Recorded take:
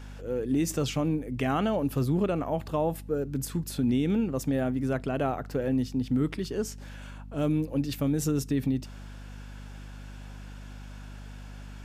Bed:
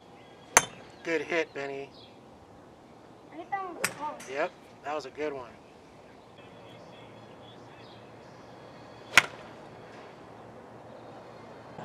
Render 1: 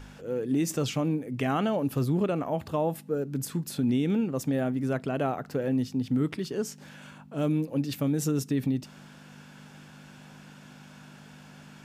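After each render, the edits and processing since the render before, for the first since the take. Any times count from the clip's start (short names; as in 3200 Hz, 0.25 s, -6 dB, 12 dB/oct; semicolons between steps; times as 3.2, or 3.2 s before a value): de-hum 50 Hz, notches 2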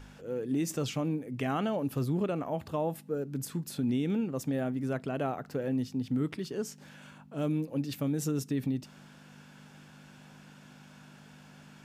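gain -4 dB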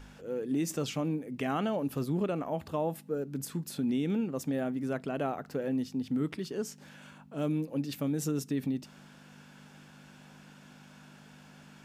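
bell 120 Hz -11.5 dB 0.22 oct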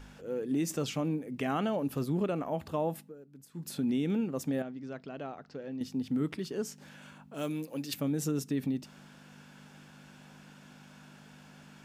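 3–3.66 dip -17 dB, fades 0.13 s; 4.62–5.81 ladder low-pass 6100 Hz, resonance 40%; 7.34–7.94 tilt +2.5 dB/oct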